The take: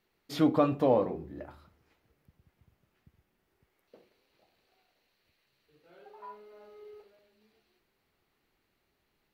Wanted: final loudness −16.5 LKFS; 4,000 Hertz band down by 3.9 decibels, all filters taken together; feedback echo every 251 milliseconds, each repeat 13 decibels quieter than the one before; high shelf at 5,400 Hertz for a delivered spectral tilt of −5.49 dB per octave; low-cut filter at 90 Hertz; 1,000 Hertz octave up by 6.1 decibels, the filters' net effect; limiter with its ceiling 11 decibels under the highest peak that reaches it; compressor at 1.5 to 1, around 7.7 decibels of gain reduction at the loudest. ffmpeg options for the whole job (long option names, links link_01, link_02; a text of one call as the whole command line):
ffmpeg -i in.wav -af "highpass=90,equalizer=frequency=1000:width_type=o:gain=8,equalizer=frequency=4000:width_type=o:gain=-8.5,highshelf=frequency=5400:gain=7.5,acompressor=threshold=-39dB:ratio=1.5,alimiter=level_in=3dB:limit=-24dB:level=0:latency=1,volume=-3dB,aecho=1:1:251|502|753:0.224|0.0493|0.0108,volume=25dB" out.wav